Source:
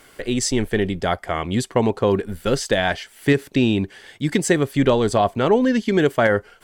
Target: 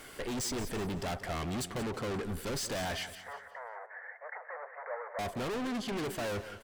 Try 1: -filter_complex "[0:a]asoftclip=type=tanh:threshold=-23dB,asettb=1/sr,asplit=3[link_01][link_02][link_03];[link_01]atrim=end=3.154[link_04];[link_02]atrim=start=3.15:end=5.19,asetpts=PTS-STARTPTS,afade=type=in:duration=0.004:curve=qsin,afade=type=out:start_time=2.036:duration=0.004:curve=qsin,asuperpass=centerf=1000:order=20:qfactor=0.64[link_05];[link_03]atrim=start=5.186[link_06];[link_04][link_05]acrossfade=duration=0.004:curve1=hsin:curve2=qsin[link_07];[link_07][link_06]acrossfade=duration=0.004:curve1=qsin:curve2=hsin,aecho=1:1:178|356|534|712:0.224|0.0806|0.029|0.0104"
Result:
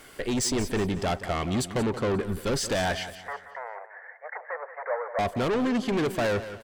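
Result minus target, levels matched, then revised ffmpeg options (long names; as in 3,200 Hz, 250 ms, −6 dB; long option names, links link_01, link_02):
soft clipping: distortion −4 dB
-filter_complex "[0:a]asoftclip=type=tanh:threshold=-34dB,asettb=1/sr,asplit=3[link_01][link_02][link_03];[link_01]atrim=end=3.154[link_04];[link_02]atrim=start=3.15:end=5.19,asetpts=PTS-STARTPTS,afade=type=in:duration=0.004:curve=qsin,afade=type=out:start_time=2.036:duration=0.004:curve=qsin,asuperpass=centerf=1000:order=20:qfactor=0.64[link_05];[link_03]atrim=start=5.186[link_06];[link_04][link_05]acrossfade=duration=0.004:curve1=hsin:curve2=qsin[link_07];[link_07][link_06]acrossfade=duration=0.004:curve1=qsin:curve2=hsin,aecho=1:1:178|356|534|712:0.224|0.0806|0.029|0.0104"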